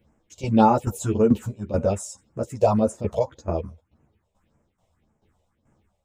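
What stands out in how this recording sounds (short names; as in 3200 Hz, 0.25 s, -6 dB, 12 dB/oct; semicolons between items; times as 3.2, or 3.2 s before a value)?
phasing stages 4, 1.8 Hz, lowest notch 240–3900 Hz; tremolo saw down 2.3 Hz, depth 75%; a shimmering, thickened sound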